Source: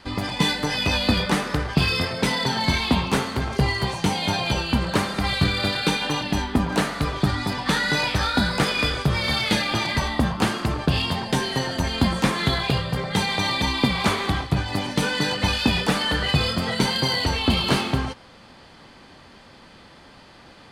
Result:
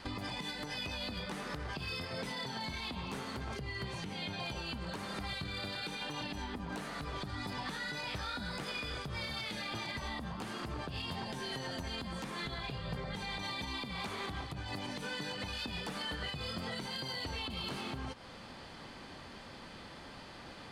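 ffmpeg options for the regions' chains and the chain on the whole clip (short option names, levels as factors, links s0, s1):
-filter_complex "[0:a]asettb=1/sr,asplit=3[s0][s1][s2];[s0]atrim=end=3.544[s3];[s1]atrim=start=3.54:end=4.4,asetpts=PTS-STARTPTS,afade=t=in:d=0.004:c=qsin,afade=t=out:st=0.856:d=0.004:c=qsin,equalizer=f=830:w=1.7:g=-7.5,acrossover=split=4000[s4][s5];[s5]acompressor=threshold=0.00794:ratio=4:attack=1:release=60[s6];[s4][s6]amix=inputs=2:normalize=0[s7];[s2]atrim=start=4.396[s8];[s3][s7]acrossfade=d=0.004:c1=hsin:c2=qsin[s9];[s9][s8]acrossfade=d=0.004:c1=qsin:c2=hsin,asettb=1/sr,asplit=3[s10][s11][s12];[s10]atrim=end=12.454[s13];[s11]atrim=start=12.45:end=13.43,asetpts=PTS-STARTPTS,afade=t=in:d=0.004:c=qsin,afade=t=out:st=0.976:d=0.004:c=qsin,highshelf=f=7600:g=-6,aeval=exprs='val(0)+0.0224*(sin(2*PI*50*n/s)+sin(2*PI*2*50*n/s)/2+sin(2*PI*3*50*n/s)/3+sin(2*PI*4*50*n/s)/4+sin(2*PI*5*50*n/s)/5)':c=same[s14];[s12]atrim=start=13.426[s15];[s13][s14]acrossfade=d=0.004:c1=hsin:c2=qsin[s16];[s16][s15]acrossfade=d=0.004:c1=qsin:c2=hsin,acompressor=threshold=0.0251:ratio=12,alimiter=level_in=1.58:limit=0.0631:level=0:latency=1:release=86,volume=0.631,volume=0.794"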